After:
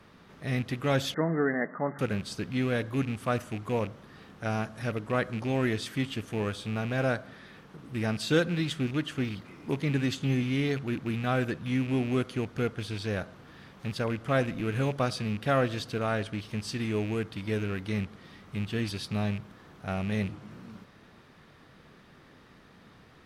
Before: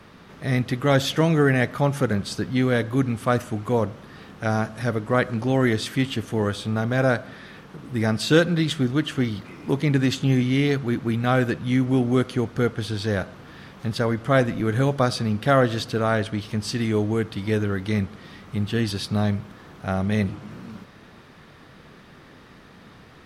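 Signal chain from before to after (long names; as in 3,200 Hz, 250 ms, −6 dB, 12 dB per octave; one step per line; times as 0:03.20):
loose part that buzzes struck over −25 dBFS, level −24 dBFS
0:01.14–0:01.99: linear-phase brick-wall band-pass 150–2,100 Hz
level −7.5 dB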